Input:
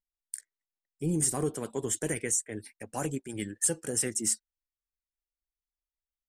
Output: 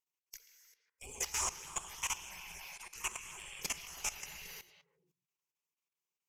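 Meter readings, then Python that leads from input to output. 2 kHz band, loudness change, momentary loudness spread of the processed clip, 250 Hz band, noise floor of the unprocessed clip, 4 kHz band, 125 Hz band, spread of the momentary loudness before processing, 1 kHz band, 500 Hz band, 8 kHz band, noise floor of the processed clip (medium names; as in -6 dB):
-1.0 dB, -9.5 dB, 18 LU, -27.5 dB, under -85 dBFS, +0.5 dB, -22.5 dB, 15 LU, -2.0 dB, -20.5 dB, -9.0 dB, under -85 dBFS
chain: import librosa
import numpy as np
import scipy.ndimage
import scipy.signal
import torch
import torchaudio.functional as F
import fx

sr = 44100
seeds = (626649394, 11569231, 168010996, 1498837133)

p1 = fx.peak_eq(x, sr, hz=1800.0, db=-2.5, octaves=2.7)
p2 = fx.hum_notches(p1, sr, base_hz=60, count=6)
p3 = fx.rev_gated(p2, sr, seeds[0], gate_ms=380, shape='flat', drr_db=4.0)
p4 = fx.spec_gate(p3, sr, threshold_db=-25, keep='weak')
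p5 = p4 + fx.echo_stepped(p4, sr, ms=134, hz=3000.0, octaves=-1.4, feedback_pct=70, wet_db=-4.0, dry=0)
p6 = fx.env_lowpass_down(p5, sr, base_hz=740.0, full_db=-24.5)
p7 = fx.schmitt(p6, sr, flips_db=-45.0)
p8 = p6 + F.gain(torch.from_numpy(p7), -12.0).numpy()
p9 = fx.ripple_eq(p8, sr, per_octave=0.75, db=10)
p10 = fx.level_steps(p9, sr, step_db=15)
y = F.gain(torch.from_numpy(p10), 11.0).numpy()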